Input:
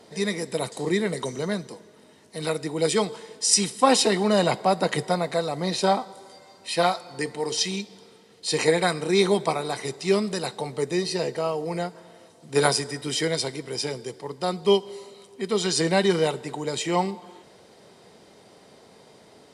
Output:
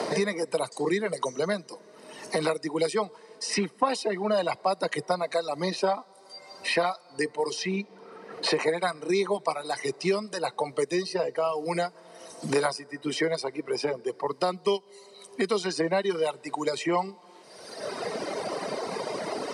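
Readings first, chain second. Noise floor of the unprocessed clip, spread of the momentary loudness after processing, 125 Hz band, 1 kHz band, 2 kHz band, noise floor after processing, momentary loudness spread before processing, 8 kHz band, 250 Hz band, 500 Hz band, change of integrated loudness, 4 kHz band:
-53 dBFS, 10 LU, -7.5 dB, -3.0 dB, -2.0 dB, -54 dBFS, 12 LU, -10.5 dB, -4.5 dB, -2.5 dB, -4.5 dB, -6.5 dB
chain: speaker cabinet 190–9800 Hz, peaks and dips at 230 Hz -3 dB, 610 Hz +4 dB, 1100 Hz +5 dB, 3400 Hz -9 dB, 7300 Hz -9 dB; reverb removal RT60 1.8 s; three-band squash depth 100%; gain -2.5 dB

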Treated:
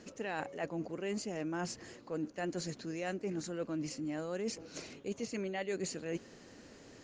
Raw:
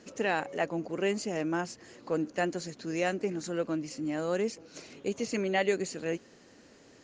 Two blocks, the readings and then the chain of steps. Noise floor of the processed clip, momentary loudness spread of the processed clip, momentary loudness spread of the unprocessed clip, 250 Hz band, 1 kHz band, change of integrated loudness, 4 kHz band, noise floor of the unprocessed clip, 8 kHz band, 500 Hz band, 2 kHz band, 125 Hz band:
-57 dBFS, 8 LU, 8 LU, -5.5 dB, -8.5 dB, -7.0 dB, -5.5 dB, -57 dBFS, -2.5 dB, -8.0 dB, -9.0 dB, -4.0 dB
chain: low shelf 110 Hz +7 dB; reverse; compressor, threshold -36 dBFS, peak gain reduction 13.5 dB; reverse; gain +1 dB

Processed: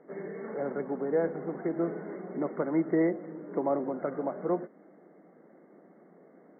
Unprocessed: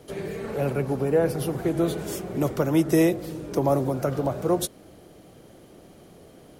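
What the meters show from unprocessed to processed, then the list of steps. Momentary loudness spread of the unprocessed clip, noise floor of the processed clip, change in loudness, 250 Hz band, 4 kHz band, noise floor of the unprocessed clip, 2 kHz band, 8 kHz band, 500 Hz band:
10 LU, -58 dBFS, -6.5 dB, -6.5 dB, under -40 dB, -51 dBFS, -7.0 dB, under -40 dB, -6.0 dB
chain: brick-wall FIR band-pass 160–2200 Hz; gain -6 dB

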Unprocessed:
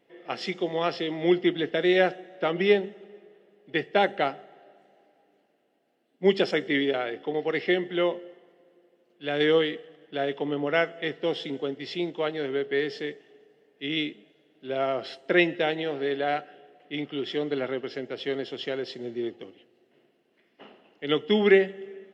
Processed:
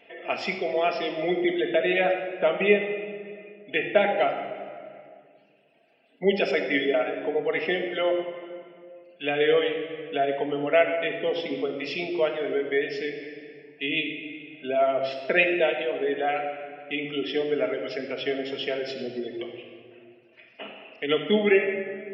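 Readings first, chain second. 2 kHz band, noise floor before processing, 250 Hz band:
+2.5 dB, -68 dBFS, -1.5 dB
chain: spectral gate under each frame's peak -30 dB strong; reverb removal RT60 1.6 s; thirty-one-band EQ 100 Hz +5 dB, 160 Hz -7 dB, 630 Hz +9 dB, 2500 Hz +11 dB, 4000 Hz -6 dB; in parallel at +3 dB: compressor, threshold -35 dBFS, peak gain reduction 21 dB; on the sum: shoebox room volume 2200 m³, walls mixed, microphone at 1.6 m; mismatched tape noise reduction encoder only; gain -4.5 dB

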